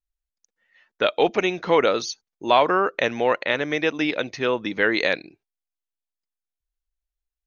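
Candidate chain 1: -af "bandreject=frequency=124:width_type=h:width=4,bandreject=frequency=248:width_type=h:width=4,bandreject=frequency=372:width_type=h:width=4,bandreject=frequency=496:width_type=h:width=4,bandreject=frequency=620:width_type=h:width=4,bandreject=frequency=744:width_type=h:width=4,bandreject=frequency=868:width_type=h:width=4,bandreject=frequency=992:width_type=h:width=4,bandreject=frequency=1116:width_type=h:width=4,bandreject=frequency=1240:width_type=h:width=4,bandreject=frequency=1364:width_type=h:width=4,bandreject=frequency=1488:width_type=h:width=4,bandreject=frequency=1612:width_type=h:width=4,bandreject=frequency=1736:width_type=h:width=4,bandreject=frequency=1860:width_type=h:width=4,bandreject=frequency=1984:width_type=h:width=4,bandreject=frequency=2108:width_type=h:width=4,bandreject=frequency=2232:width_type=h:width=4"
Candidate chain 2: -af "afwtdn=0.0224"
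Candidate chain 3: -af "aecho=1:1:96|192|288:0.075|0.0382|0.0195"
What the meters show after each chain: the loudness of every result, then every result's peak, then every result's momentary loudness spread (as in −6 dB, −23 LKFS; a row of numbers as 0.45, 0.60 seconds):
−22.5, −22.0, −22.0 LKFS; −4.0, −4.5, −5.0 dBFS; 6, 6, 6 LU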